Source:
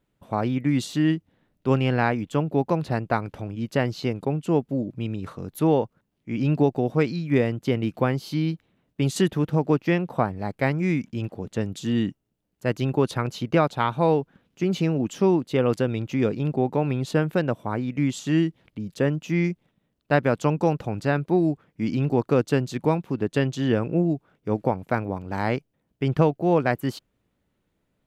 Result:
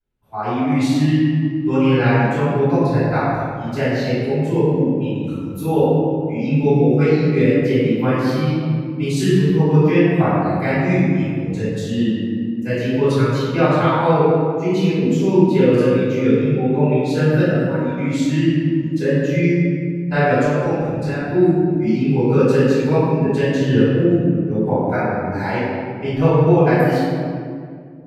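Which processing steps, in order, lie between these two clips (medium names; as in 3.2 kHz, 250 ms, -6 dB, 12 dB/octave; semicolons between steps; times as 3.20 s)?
spectral noise reduction 12 dB; 20.36–21.21 s: compression 2:1, threshold -28 dBFS, peak gain reduction 7.5 dB; reverberation RT60 2.1 s, pre-delay 3 ms, DRR -18 dB; trim -13.5 dB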